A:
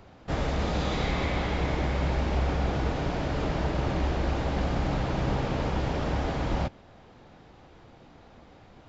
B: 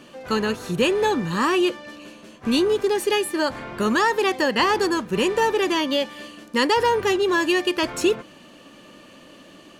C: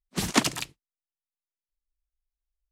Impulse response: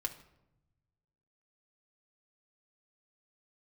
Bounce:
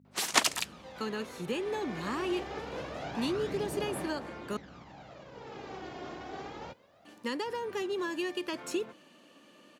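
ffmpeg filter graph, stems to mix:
-filter_complex "[0:a]alimiter=limit=-22dB:level=0:latency=1:release=47,aphaser=in_gain=1:out_gain=1:delay=2.8:decay=0.58:speed=0.25:type=sinusoidal,acrusher=bits=11:mix=0:aa=0.000001,adelay=50,volume=0.5dB,afade=t=in:st=1.46:d=0.78:silence=0.237137,afade=t=out:st=3.44:d=0.79:silence=0.298538,afade=t=in:st=5.29:d=0.44:silence=0.446684[a];[1:a]acrossover=split=350[b][c];[c]acompressor=threshold=-23dB:ratio=6[d];[b][d]amix=inputs=2:normalize=0,adelay=700,volume=-11dB,asplit=3[e][f][g];[e]atrim=end=4.57,asetpts=PTS-STARTPTS,afade=t=out:st=4.566:d=0.004:c=hsin[h];[f]atrim=start=4.57:end=7.05,asetpts=PTS-STARTPTS,volume=0[i];[g]atrim=start=7.05,asetpts=PTS-STARTPTS,afade=t=in:d=0.004:c=hsin[j];[h][i][j]concat=n=3:v=0:a=1[k];[2:a]highpass=590,aeval=exprs='val(0)+0.00316*(sin(2*PI*50*n/s)+sin(2*PI*2*50*n/s)/2+sin(2*PI*3*50*n/s)/3+sin(2*PI*4*50*n/s)/4+sin(2*PI*5*50*n/s)/5)':c=same,volume=0dB[l];[a][k][l]amix=inputs=3:normalize=0,highpass=180"

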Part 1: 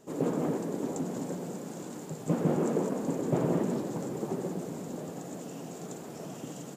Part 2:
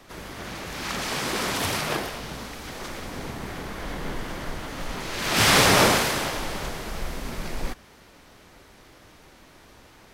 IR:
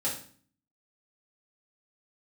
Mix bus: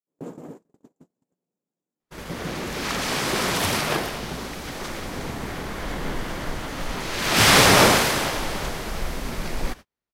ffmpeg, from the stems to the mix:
-filter_complex "[0:a]volume=-6.5dB[a];[1:a]adelay=2000,volume=3dB[b];[a][b]amix=inputs=2:normalize=0,agate=range=-43dB:threshold=-35dB:ratio=16:detection=peak"

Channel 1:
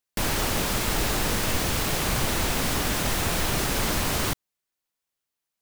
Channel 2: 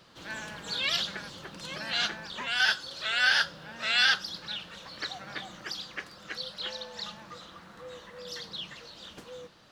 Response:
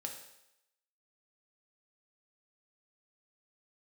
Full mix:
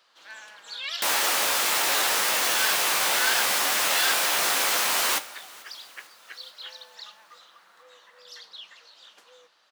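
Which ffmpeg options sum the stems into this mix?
-filter_complex "[0:a]acontrast=89,flanger=delay=9.3:depth=9.3:regen=46:speed=0.68:shape=triangular,adelay=850,volume=-1dB,asplit=3[a][b][c];[b]volume=-5.5dB[d];[c]volume=-21dB[e];[1:a]volume=-4dB[f];[2:a]atrim=start_sample=2205[g];[d][g]afir=irnorm=-1:irlink=0[h];[e]aecho=0:1:441|882|1323|1764|2205|2646|3087|3528|3969:1|0.57|0.325|0.185|0.106|0.0602|0.0343|0.0195|0.0111[i];[a][f][h][i]amix=inputs=4:normalize=0,highpass=750"

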